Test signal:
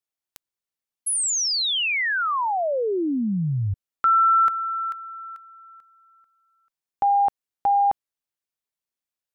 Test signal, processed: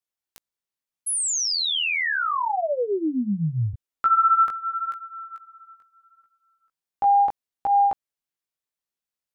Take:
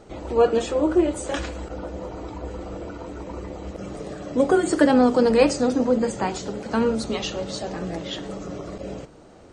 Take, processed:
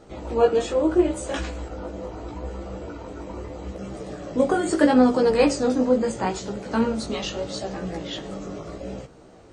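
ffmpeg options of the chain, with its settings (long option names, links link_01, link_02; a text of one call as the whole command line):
ffmpeg -i in.wav -af "flanger=delay=15:depth=4.9:speed=0.77,aeval=exprs='0.422*(cos(1*acos(clip(val(0)/0.422,-1,1)))-cos(1*PI/2))+0.00266*(cos(2*acos(clip(val(0)/0.422,-1,1)))-cos(2*PI/2))':channel_layout=same,volume=2dB" out.wav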